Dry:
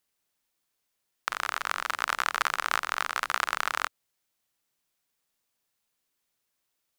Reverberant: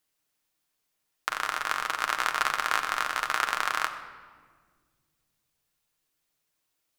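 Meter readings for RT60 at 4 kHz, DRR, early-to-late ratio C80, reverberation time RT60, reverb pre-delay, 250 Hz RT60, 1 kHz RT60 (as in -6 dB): 1.1 s, 5.0 dB, 11.0 dB, 1.7 s, 6 ms, 2.8 s, 1.5 s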